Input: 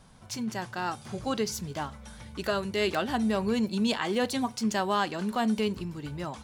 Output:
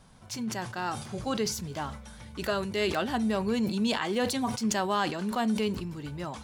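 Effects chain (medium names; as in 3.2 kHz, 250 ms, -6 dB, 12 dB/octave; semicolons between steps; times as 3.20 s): decay stretcher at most 72 dB/s; trim -1 dB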